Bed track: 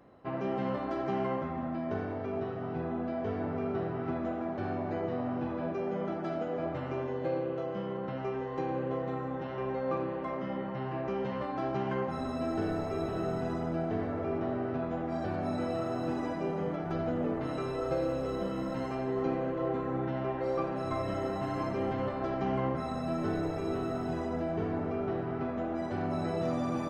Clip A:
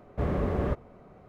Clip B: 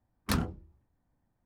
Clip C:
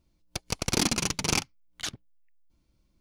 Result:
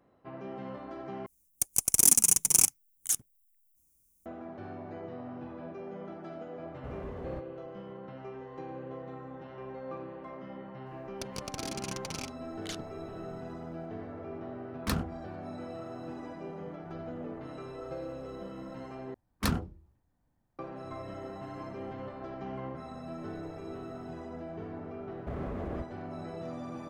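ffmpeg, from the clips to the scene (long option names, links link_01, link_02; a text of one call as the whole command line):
ffmpeg -i bed.wav -i cue0.wav -i cue1.wav -i cue2.wav -filter_complex "[3:a]asplit=2[link_01][link_02];[1:a]asplit=2[link_03][link_04];[2:a]asplit=2[link_05][link_06];[0:a]volume=-8.5dB[link_07];[link_01]aexciter=amount=11.2:drive=9.9:freq=6700[link_08];[link_03]alimiter=limit=-23.5dB:level=0:latency=1:release=64[link_09];[link_02]acompressor=threshold=-35dB:ratio=6:attack=3.2:release=140:knee=1:detection=peak[link_10];[link_04]acompressor=threshold=-37dB:ratio=3:attack=53:release=24:knee=1:detection=rms[link_11];[link_07]asplit=3[link_12][link_13][link_14];[link_12]atrim=end=1.264[link_15];[link_08]atrim=end=3,asetpts=PTS-STARTPTS,volume=-11dB[link_16];[link_13]atrim=start=4.256:end=19.144[link_17];[link_06]atrim=end=1.45[link_18];[link_14]atrim=start=20.586[link_19];[link_09]atrim=end=1.28,asetpts=PTS-STARTPTS,volume=-10.5dB,afade=type=in:duration=0.004:curve=hsin,afade=type=out:start_time=1.276:duration=0.004:curve=hsin,adelay=293706S[link_20];[link_10]atrim=end=3,asetpts=PTS-STARTPTS,volume=-0.5dB,afade=type=in:duration=0.004:curve=hsin,afade=type=out:start_time=2.996:duration=0.004:curve=hsin,adelay=10860[link_21];[link_05]atrim=end=1.45,asetpts=PTS-STARTPTS,volume=-2dB,afade=type=in:duration=0.004:curve=hsin,afade=type=out:start_time=1.446:duration=0.004:curve=hsin,adelay=14580[link_22];[link_11]atrim=end=1.28,asetpts=PTS-STARTPTS,volume=-4.5dB,afade=type=in:duration=0.004:curve=hsin,afade=type=out:start_time=1.276:duration=0.004:curve=hsin,adelay=25090[link_23];[link_15][link_16]acrossfade=duration=0.004:curve1=hsin:curve2=hsin[link_24];[link_24][link_17]acrossfade=duration=0.004:curve1=hsin:curve2=hsin[link_25];[link_25][link_18]acrossfade=duration=0.004:curve1=hsin:curve2=hsin[link_26];[link_26][link_19]acrossfade=duration=0.004:curve1=hsin:curve2=hsin[link_27];[link_27][link_20][link_21][link_22][link_23]amix=inputs=5:normalize=0" out.wav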